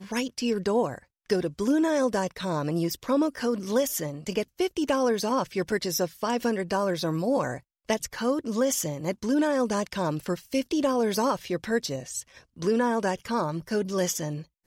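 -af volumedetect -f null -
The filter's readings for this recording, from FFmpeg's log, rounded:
mean_volume: -27.2 dB
max_volume: -12.3 dB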